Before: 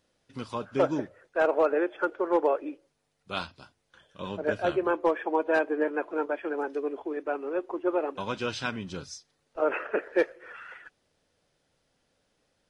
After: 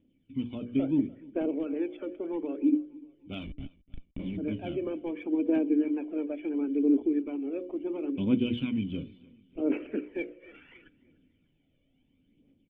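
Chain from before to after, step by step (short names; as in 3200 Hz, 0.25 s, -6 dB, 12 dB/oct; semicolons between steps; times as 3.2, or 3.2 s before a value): high shelf 3200 Hz -7.5 dB; notches 60/120/180/240/300/360/420/480/540 Hz; in parallel at -2.5 dB: compressor, threshold -34 dBFS, peak gain reduction 14 dB; on the sum: limiter -17.5 dBFS, peak gain reduction 5.5 dB; AGC gain up to 4 dB; 3.44–4.37 Schmitt trigger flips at -39.5 dBFS; vocal tract filter i; phaser 0.72 Hz, delay 1.8 ms, feedback 54%; feedback echo 0.295 s, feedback 42%, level -23 dB; gain +6.5 dB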